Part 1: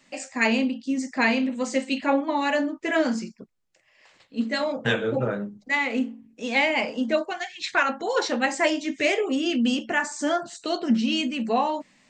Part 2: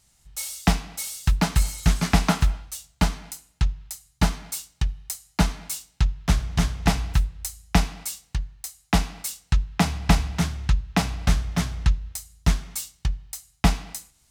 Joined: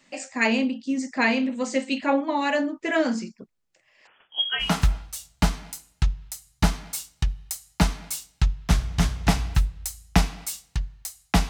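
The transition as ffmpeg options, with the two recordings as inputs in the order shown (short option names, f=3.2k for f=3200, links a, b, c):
-filter_complex "[0:a]asettb=1/sr,asplit=3[a][b][c];[a]atrim=end=4.074[d];[b]atrim=start=4.07:end=4.75,asetpts=PTS-STARTPTS,afade=t=in:d=0.004:c=qsin,afade=t=out:st=0.676:d=0.004:c=qsin,lowpass=f=3k:t=q:w=0.5098,lowpass=f=3k:t=q:w=0.6013,lowpass=f=3k:t=q:w=0.9,lowpass=f=3k:t=q:w=2.563,afreqshift=-3500[e];[c]atrim=start=4.746[f];[d][e]acrossfade=d=0.004:c1=hsin:c2=qsin[g];[g][f]acrossfade=d=0.004:c1=qsin:c2=hsin,apad=whole_dur=11.49,atrim=end=11.49,atrim=end=4.75,asetpts=PTS-STARTPTS[h];[1:a]atrim=start=2.18:end=9.08,asetpts=PTS-STARTPTS[i];[h][i]acrossfade=d=0.16:c1=tri:c2=tri"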